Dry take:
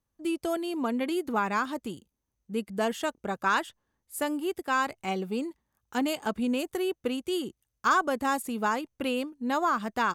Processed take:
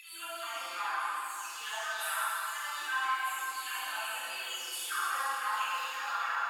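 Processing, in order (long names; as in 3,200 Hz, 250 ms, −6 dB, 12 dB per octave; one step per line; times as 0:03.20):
every frequency bin delayed by itself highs early, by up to 990 ms
Chebyshev high-pass filter 1,100 Hz, order 3
downward compressor 10 to 1, threshold −32 dBFS, peak gain reduction 10.5 dB
time stretch by phase vocoder 0.64×
convolution reverb RT60 3.2 s, pre-delay 20 ms, DRR −9 dB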